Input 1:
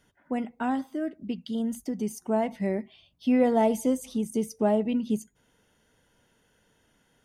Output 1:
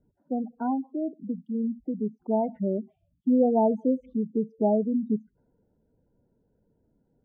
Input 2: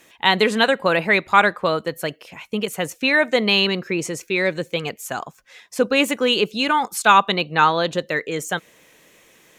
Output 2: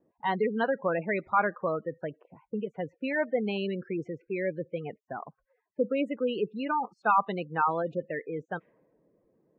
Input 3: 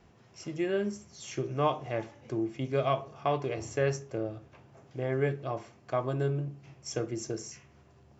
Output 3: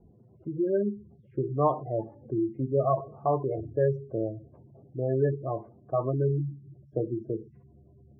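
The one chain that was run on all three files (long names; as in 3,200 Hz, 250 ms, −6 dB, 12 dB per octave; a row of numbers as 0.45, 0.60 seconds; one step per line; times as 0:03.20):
gate on every frequency bin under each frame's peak −15 dB strong
low-pass that shuts in the quiet parts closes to 470 Hz, open at −18 dBFS
low-pass filter 1,400 Hz 12 dB per octave
normalise the peak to −12 dBFS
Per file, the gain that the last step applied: +1.0, −8.5, +4.0 decibels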